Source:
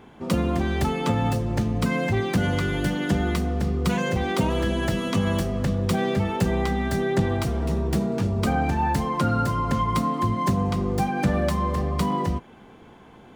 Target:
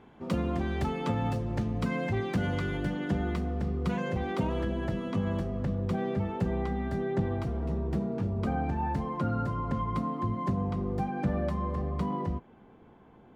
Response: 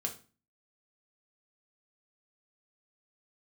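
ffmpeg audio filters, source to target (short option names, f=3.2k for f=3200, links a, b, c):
-af "asetnsamples=n=441:p=0,asendcmd='2.77 lowpass f 1800;4.65 lowpass f 1100',lowpass=f=3.1k:p=1,volume=-6.5dB"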